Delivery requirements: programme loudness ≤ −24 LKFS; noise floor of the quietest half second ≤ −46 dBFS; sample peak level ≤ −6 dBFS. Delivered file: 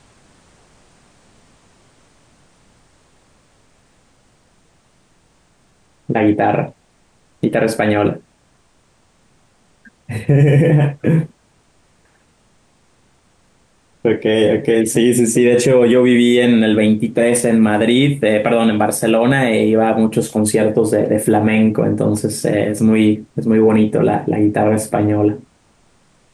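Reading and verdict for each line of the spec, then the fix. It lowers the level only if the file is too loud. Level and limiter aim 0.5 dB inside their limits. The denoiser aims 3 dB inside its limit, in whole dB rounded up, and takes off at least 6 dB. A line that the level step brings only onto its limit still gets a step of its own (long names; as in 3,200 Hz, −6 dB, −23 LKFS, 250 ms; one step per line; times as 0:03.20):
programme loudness −14.5 LKFS: out of spec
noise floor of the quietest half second −56 dBFS: in spec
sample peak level −3.5 dBFS: out of spec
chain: level −10 dB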